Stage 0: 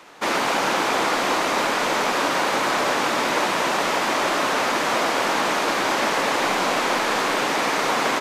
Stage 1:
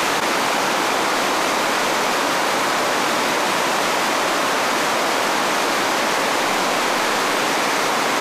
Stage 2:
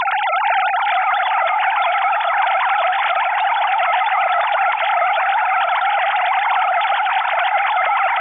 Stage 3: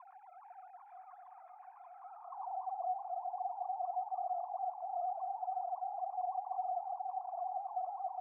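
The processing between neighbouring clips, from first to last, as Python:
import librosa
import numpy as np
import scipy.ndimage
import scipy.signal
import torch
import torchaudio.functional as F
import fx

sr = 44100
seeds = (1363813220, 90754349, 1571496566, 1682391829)

y1 = fx.high_shelf(x, sr, hz=5300.0, db=4.5)
y1 = fx.env_flatten(y1, sr, amount_pct=100)
y2 = fx.sine_speech(y1, sr)
y2 = fx.echo_diffused(y2, sr, ms=986, feedback_pct=41, wet_db=-10.5)
y2 = F.gain(torch.from_numpy(y2), 2.0).numpy()
y3 = fx.filter_sweep_bandpass(y2, sr, from_hz=1700.0, to_hz=720.0, start_s=1.9, end_s=2.69, q=3.8)
y3 = fx.formant_cascade(y3, sr, vowel='a')
y3 = fx.band_shelf(y3, sr, hz=1300.0, db=-10.5, octaves=2.4)
y3 = F.gain(torch.from_numpy(y3), -5.0).numpy()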